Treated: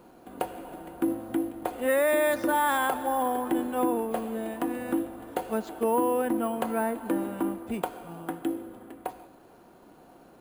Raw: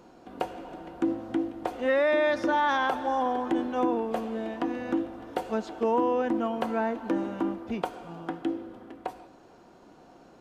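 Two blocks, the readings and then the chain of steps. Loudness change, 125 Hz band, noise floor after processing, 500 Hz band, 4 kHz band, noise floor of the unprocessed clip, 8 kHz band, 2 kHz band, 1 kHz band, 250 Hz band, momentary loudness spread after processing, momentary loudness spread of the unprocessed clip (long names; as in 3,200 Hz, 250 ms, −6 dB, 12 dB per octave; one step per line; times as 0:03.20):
0.0 dB, 0.0 dB, −54 dBFS, 0.0 dB, −1.5 dB, −54 dBFS, can't be measured, −0.5 dB, 0.0 dB, 0.0 dB, 14 LU, 14 LU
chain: bad sample-rate conversion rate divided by 4×, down filtered, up hold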